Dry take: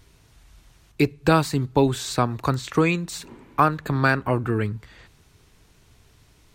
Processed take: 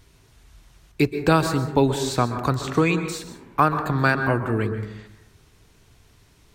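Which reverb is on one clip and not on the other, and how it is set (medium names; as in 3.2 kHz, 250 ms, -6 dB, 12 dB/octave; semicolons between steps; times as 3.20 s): plate-style reverb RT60 0.84 s, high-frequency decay 0.35×, pre-delay 115 ms, DRR 8 dB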